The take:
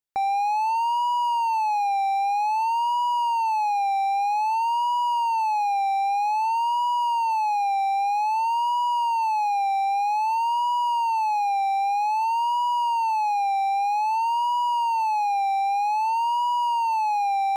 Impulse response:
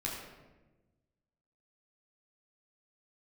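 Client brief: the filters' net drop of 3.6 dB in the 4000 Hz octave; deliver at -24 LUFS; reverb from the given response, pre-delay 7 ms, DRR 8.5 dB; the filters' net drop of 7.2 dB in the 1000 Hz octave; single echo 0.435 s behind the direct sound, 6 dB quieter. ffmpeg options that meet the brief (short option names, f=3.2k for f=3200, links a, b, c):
-filter_complex "[0:a]equalizer=f=1k:t=o:g=-8.5,equalizer=f=4k:t=o:g=-5,aecho=1:1:435:0.501,asplit=2[a][b];[1:a]atrim=start_sample=2205,adelay=7[c];[b][c]afir=irnorm=-1:irlink=0,volume=-11.5dB[d];[a][d]amix=inputs=2:normalize=0,volume=5.5dB"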